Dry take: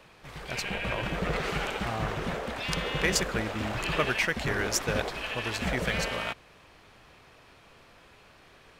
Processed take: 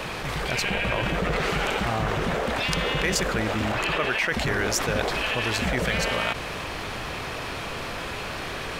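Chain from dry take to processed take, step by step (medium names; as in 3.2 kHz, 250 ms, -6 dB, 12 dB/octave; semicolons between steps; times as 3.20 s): 3.72–4.32 s: tone controls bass -7 dB, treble -5 dB; level flattener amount 70%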